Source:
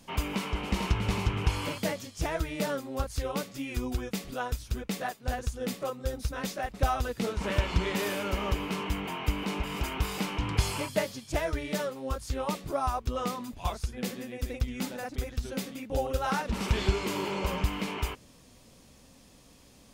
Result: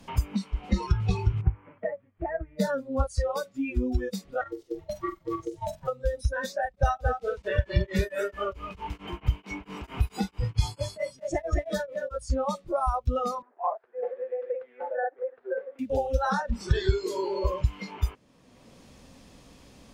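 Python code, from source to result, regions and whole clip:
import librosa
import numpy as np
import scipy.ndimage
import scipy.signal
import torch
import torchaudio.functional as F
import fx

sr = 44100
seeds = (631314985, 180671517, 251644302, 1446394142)

y = fx.chain(x, sr, fx.steep_lowpass(hz=2000.0, slope=36),
    fx.upward_expand(threshold_db=-37.0, expansion=1.5), at=(1.41, 2.6))
y = fx.chain(y, sr, fx.level_steps(step_db=11),
    fx.ring_mod(carrier_hz=400.0),
    fx.room_flutter(wall_m=7.7, rt60_s=0.31), at=(4.41, 5.88))
y = fx.chain(y, sr, fx.echo_single(ms=224, db=-5.0),
    fx.tremolo_abs(hz=4.5), at=(6.65, 12.15))
y = fx.chain(y, sr, fx.delta_mod(bps=64000, step_db=-46.0),
    fx.ellip_bandpass(low_hz=390.0, high_hz=1700.0, order=3, stop_db=70),
    fx.peak_eq(hz=640.0, db=4.5, octaves=1.7), at=(13.42, 15.79))
y = fx.high_shelf(y, sr, hz=8500.0, db=-11.5)
y = fx.noise_reduce_blind(y, sr, reduce_db=22)
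y = fx.band_squash(y, sr, depth_pct=70)
y = y * librosa.db_to_amplitude(6.0)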